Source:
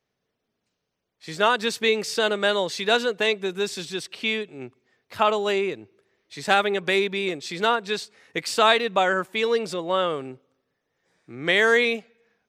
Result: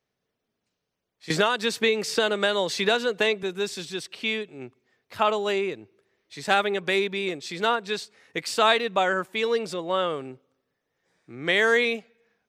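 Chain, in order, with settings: 1.3–3.43 three-band squash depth 100%; gain -2 dB

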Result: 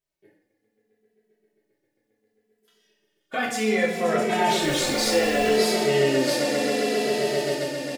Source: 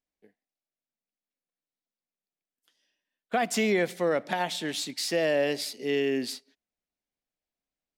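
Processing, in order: swelling echo 0.133 s, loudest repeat 8, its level -14.5 dB; in parallel at +2 dB: level quantiser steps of 11 dB; 3.51–3.93 on the sum: gate -21 dBFS, range -7 dB; 4.62–5.49 added noise pink -40 dBFS; reverb, pre-delay 3 ms, DRR -2.5 dB; endless flanger 2.7 ms -0.68 Hz

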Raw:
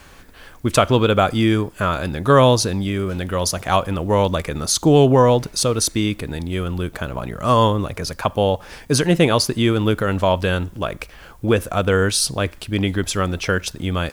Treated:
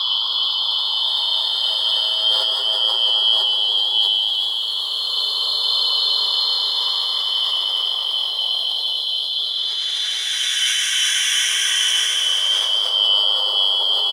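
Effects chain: four-band scrambler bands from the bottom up 2413; steep high-pass 390 Hz 96 dB/oct; negative-ratio compressor -19 dBFS, ratio -1; Paulstretch 7.3×, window 0.50 s, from 1.06; on a send: echo 0.123 s -12.5 dB; on the sum: sustainer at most 23 dB/s

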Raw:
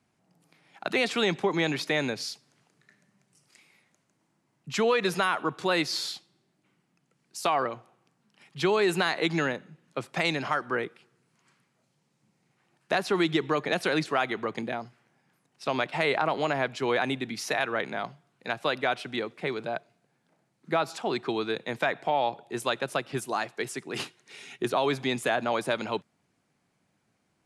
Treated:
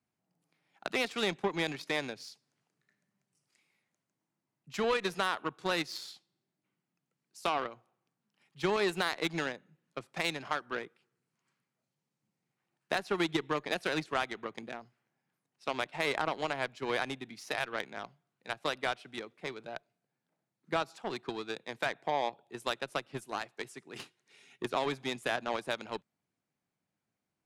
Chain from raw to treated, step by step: added harmonics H 3 -24 dB, 5 -32 dB, 7 -21 dB, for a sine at -11 dBFS; gain -4 dB

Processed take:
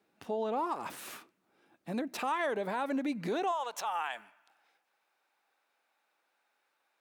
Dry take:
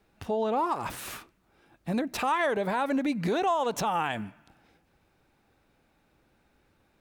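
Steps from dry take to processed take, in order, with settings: Chebyshev high-pass 240 Hz, order 2, from 3.51 s 870 Hz; gain -5 dB

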